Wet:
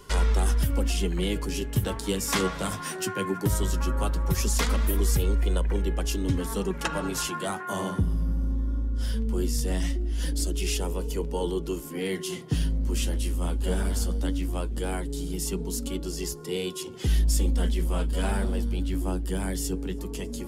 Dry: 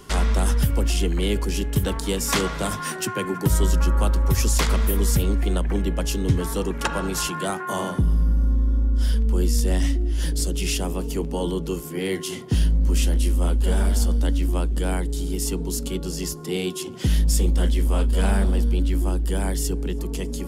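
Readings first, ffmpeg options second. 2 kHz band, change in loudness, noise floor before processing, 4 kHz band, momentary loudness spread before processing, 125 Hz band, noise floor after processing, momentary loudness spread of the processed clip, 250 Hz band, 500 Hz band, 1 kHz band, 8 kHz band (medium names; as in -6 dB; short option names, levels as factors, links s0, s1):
-3.5 dB, -5.0 dB, -32 dBFS, -4.0 dB, 6 LU, -5.5 dB, -36 dBFS, 6 LU, -4.0 dB, -3.5 dB, -4.0 dB, -4.0 dB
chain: -af "flanger=delay=2:depth=9:regen=39:speed=0.18:shape=sinusoidal"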